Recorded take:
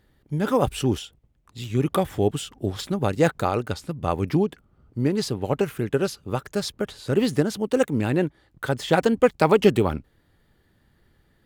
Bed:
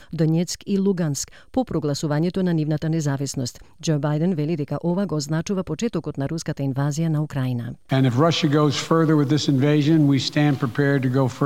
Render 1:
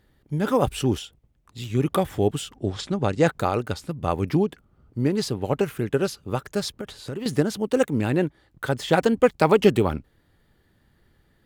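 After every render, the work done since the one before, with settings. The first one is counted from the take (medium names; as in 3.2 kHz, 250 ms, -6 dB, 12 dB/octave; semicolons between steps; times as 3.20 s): 2.57–3.28 s: low-pass 8.3 kHz 24 dB/octave; 6.71–7.26 s: compression 12:1, threshold -27 dBFS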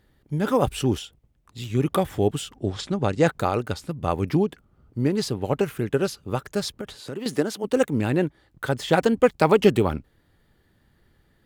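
6.95–7.63 s: high-pass 120 Hz -> 340 Hz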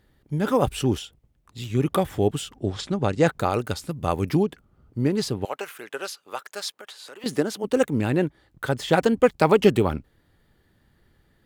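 3.50–4.43 s: treble shelf 5.2 kHz +7 dB; 5.45–7.24 s: high-pass 790 Hz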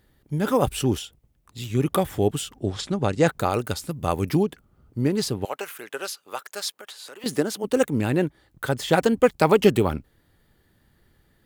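treble shelf 8.1 kHz +7.5 dB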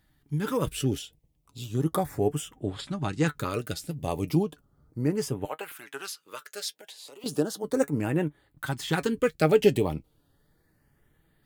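LFO notch saw up 0.35 Hz 420–6300 Hz; flange 1.6 Hz, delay 6.1 ms, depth 1.2 ms, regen +55%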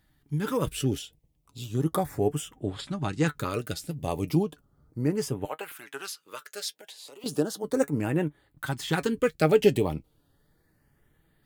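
no audible change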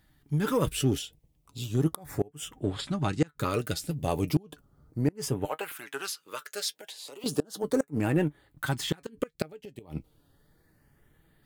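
inverted gate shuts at -14 dBFS, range -29 dB; in parallel at -9.5 dB: hard clipper -29.5 dBFS, distortion -5 dB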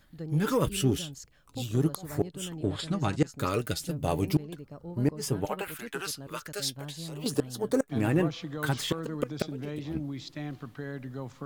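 add bed -19 dB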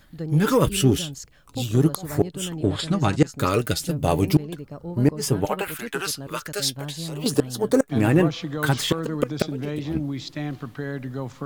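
trim +7.5 dB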